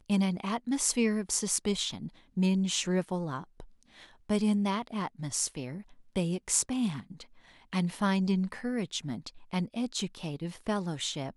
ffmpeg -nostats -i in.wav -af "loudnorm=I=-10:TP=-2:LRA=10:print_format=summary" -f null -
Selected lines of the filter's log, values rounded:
Input Integrated:    -31.7 LUFS
Input True Peak:      -9.7 dBTP
Input LRA:             3.8 LU
Input Threshold:     -42.1 LUFS